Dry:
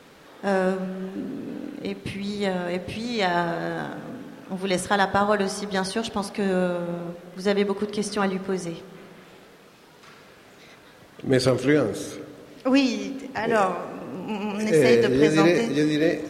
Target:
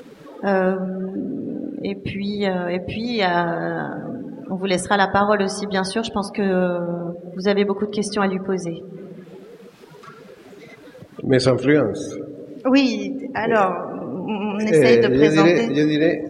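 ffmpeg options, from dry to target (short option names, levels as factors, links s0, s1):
-filter_complex "[0:a]asettb=1/sr,asplit=3[s0][s1][s2];[s0]atrim=end=11.414[s3];[s1]atrim=start=11.41:end=12.04,asetpts=PTS-STARTPTS,afade=t=in:d=0.004:c=qsin,afade=t=out:st=0.626:d=0.004:c=qsin,lowpass=11000[s4];[s2]atrim=start=12.036[s5];[s3][s4]acrossfade=d=0.004:c1=hsin:c2=qsin[s6];[s6][s5]acrossfade=d=0.004:c1=qsin:c2=hsin,afftdn=nr=19:nf=-39,asplit=2[s7][s8];[s8]acompressor=mode=upward:threshold=0.0794:ratio=2.5,volume=0.794[s9];[s7][s9]amix=inputs=2:normalize=0,volume=0.891"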